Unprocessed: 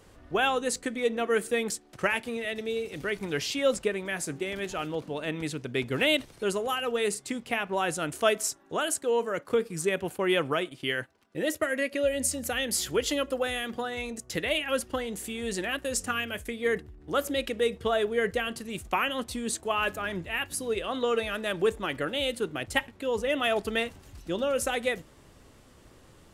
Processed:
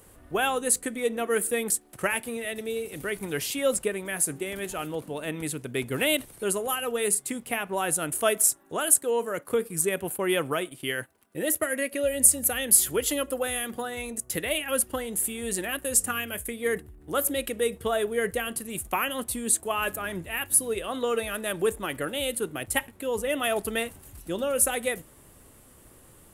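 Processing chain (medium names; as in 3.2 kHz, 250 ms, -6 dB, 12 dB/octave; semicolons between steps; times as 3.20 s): resonant high shelf 7.6 kHz +12.5 dB, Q 1.5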